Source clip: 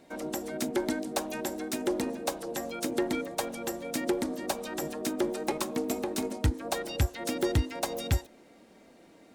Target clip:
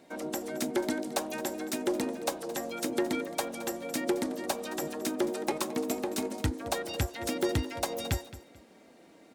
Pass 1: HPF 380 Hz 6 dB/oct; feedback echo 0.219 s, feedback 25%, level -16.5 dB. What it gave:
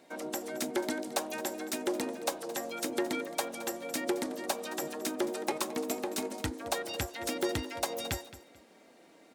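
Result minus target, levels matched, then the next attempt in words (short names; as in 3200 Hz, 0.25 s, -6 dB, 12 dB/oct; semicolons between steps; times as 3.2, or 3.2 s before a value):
125 Hz band -6.0 dB
HPF 120 Hz 6 dB/oct; feedback echo 0.219 s, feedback 25%, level -16.5 dB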